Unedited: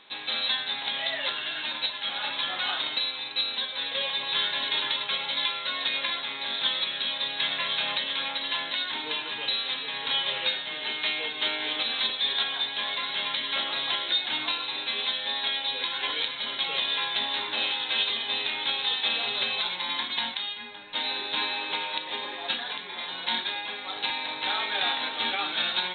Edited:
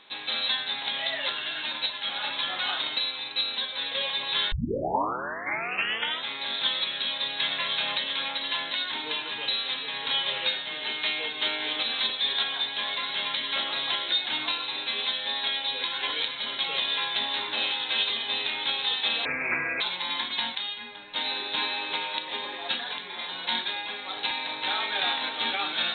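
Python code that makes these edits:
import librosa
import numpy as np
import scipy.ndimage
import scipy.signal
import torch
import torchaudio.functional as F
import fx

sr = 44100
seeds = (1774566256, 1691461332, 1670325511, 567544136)

y = fx.edit(x, sr, fx.tape_start(start_s=4.52, length_s=1.76),
    fx.speed_span(start_s=19.25, length_s=0.35, speed=0.63), tone=tone)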